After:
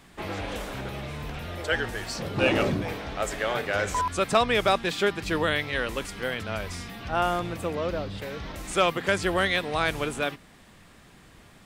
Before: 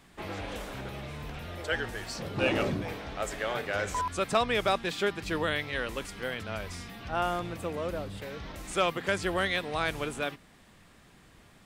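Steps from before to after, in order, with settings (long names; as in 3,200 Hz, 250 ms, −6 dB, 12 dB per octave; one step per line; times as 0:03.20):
0:02.31–0:02.97: surface crackle 24 per second → 93 per second −49 dBFS
0:07.74–0:08.19: high shelf with overshoot 6,800 Hz −9 dB, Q 1.5
level +4.5 dB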